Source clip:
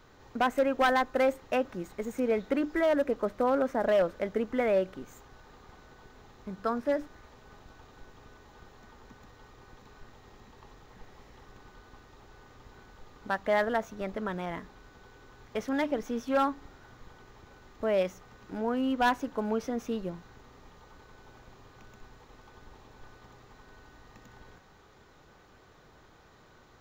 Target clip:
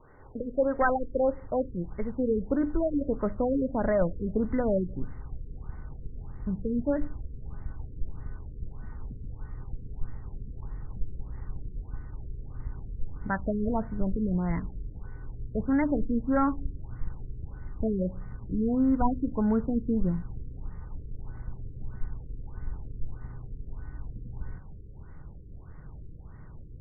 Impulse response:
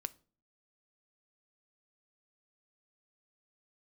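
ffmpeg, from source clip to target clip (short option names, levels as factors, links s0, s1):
-filter_complex "[0:a]asubboost=boost=8:cutoff=170,asplit=2[s0][s1];[1:a]atrim=start_sample=2205,lowpass=2800[s2];[s1][s2]afir=irnorm=-1:irlink=0,volume=2.51[s3];[s0][s3]amix=inputs=2:normalize=0,afftfilt=real='re*lt(b*sr/1024,500*pow(2300/500,0.5+0.5*sin(2*PI*1.6*pts/sr)))':imag='im*lt(b*sr/1024,500*pow(2300/500,0.5+0.5*sin(2*PI*1.6*pts/sr)))':win_size=1024:overlap=0.75,volume=0.422"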